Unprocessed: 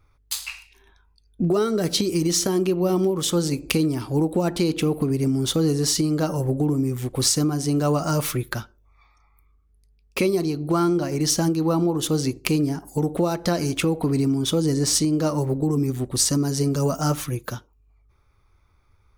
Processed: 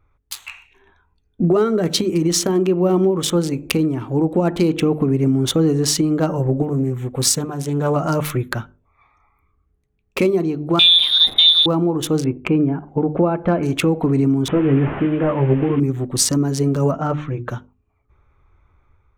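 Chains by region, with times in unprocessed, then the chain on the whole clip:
6.62–7.96 s: treble shelf 9.8 kHz +9.5 dB + comb of notches 310 Hz + loudspeaker Doppler distortion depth 0.22 ms
10.79–11.66 s: zero-crossing glitches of -22.5 dBFS + bass shelf 280 Hz +11 dB + frequency inversion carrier 3.8 kHz
12.24–13.63 s: low-pass 2.6 kHz 24 dB/octave + band-stop 1.9 kHz, Q 7
14.48–15.80 s: one-bit delta coder 16 kbps, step -32 dBFS + doubling 15 ms -6 dB
16.91–17.49 s: distance through air 190 m + hum notches 60/120/180/240/300/360 Hz
whole clip: local Wiener filter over 9 samples; hum notches 50/100/150/200/250 Hz; level rider gain up to 5.5 dB

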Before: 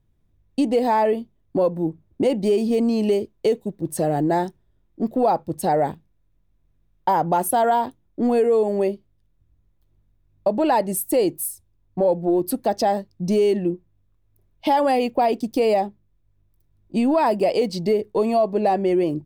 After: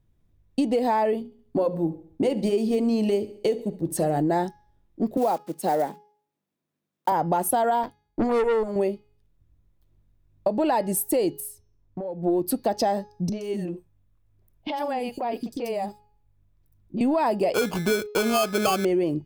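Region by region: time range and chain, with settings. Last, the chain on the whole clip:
1.18–4.22 s: hum notches 60/120/180/240/300/360/420/480/540 Hz + feedback delay 69 ms, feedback 49%, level -19 dB
5.17–7.12 s: block-companded coder 5-bit + high-pass 180 Hz 24 dB/octave + upward expansion, over -26 dBFS
7.83–8.76 s: rippled EQ curve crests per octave 1.8, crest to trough 9 dB + transient shaper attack +8 dB, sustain -4 dB + valve stage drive 16 dB, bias 0.7
11.40–12.23 s: treble shelf 4.3 kHz -10 dB + compression 8:1, threshold -29 dBFS
13.29–17.01 s: compression 4:1, threshold -25 dBFS + three bands offset in time lows, mids, highs 30/120 ms, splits 380/4900 Hz
17.54–18.85 s: sample-rate reducer 1.9 kHz + gate -38 dBFS, range -25 dB
whole clip: compression, threshold -19 dBFS; de-hum 418.1 Hz, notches 15

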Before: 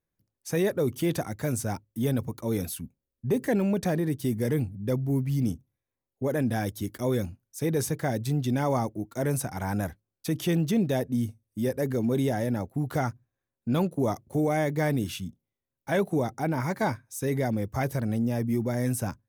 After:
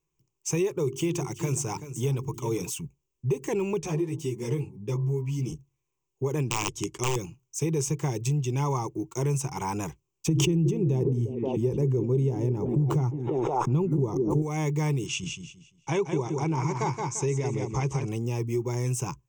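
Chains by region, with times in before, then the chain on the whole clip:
0.81–2.70 s: hum notches 50/100/150/200/250/300/350/400 Hz + delay 381 ms -14.5 dB
3.79–5.52 s: treble shelf 10 kHz -4.5 dB + de-hum 53.69 Hz, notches 21 + three-phase chorus
6.49–7.16 s: low-pass 10 kHz + integer overflow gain 20.5 dB
10.27–14.42 s: tilt shelf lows +9 dB, about 730 Hz + repeats whose band climbs or falls 176 ms, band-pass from 260 Hz, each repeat 0.7 oct, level -8 dB + swell ahead of each attack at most 26 dB/s
15.06–18.09 s: low-pass 8 kHz 24 dB/octave + feedback delay 172 ms, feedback 28%, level -6 dB
whole clip: rippled EQ curve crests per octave 0.71, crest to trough 17 dB; compression 3:1, threshold -25 dBFS; peaking EQ 5.2 kHz +8 dB 0.7 oct

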